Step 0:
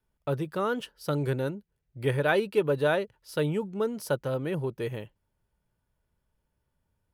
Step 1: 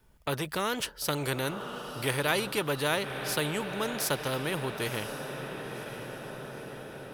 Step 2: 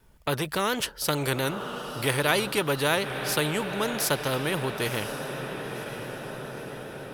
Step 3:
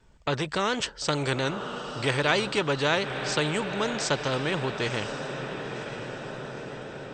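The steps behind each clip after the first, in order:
feedback delay with all-pass diffusion 1,013 ms, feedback 52%, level −16 dB; every bin compressed towards the loudest bin 2 to 1
pitch vibrato 7.3 Hz 40 cents; level +4 dB
MP2 64 kbit/s 32,000 Hz

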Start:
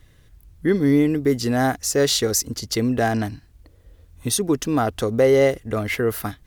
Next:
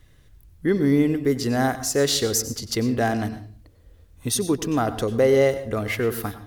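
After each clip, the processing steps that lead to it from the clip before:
convolution reverb RT60 0.45 s, pre-delay 93 ms, DRR 12 dB
level −2 dB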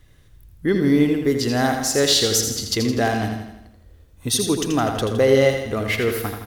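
dynamic equaliser 3,500 Hz, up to +6 dB, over −40 dBFS, Q 1
repeating echo 82 ms, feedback 54%, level −7 dB
level +1 dB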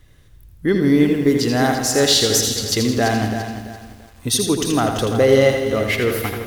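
feedback echo at a low word length 338 ms, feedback 35%, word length 7 bits, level −10 dB
level +2 dB

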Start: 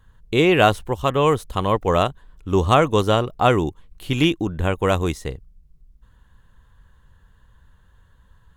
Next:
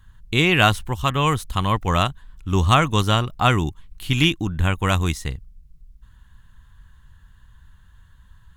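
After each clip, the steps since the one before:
parametric band 480 Hz −14 dB 1.5 octaves
level +4.5 dB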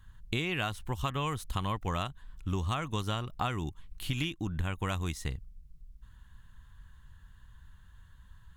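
downward compressor 12 to 1, threshold −24 dBFS, peak gain reduction 14.5 dB
level −4.5 dB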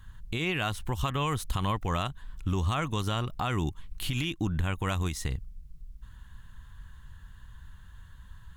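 brickwall limiter −25 dBFS, peak gain reduction 10 dB
level +6 dB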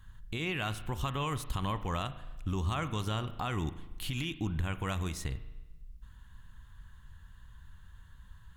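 spring reverb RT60 1.1 s, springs 37 ms, chirp 40 ms, DRR 12 dB
level −4.5 dB

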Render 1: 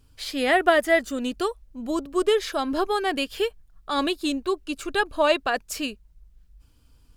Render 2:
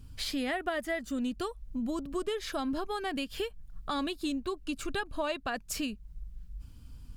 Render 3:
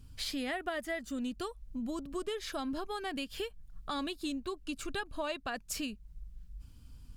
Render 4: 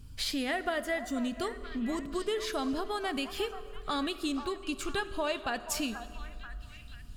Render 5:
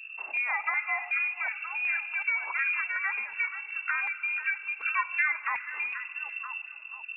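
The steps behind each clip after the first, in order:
low shelf with overshoot 280 Hz +7.5 dB, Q 1.5; downward compressor 4 to 1, threshold −34 dBFS, peak gain reduction 17 dB; level +1.5 dB
parametric band 7,000 Hz +2.5 dB 2.9 octaves; level −4 dB
echo through a band-pass that steps 484 ms, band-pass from 940 Hz, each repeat 0.7 octaves, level −8.5 dB; on a send at −12 dB: convolution reverb RT60 2.5 s, pre-delay 4 ms; on the sum: level +4 dB
voice inversion scrambler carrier 2,700 Hz; auto-filter high-pass saw down 2.7 Hz 710–1,700 Hz

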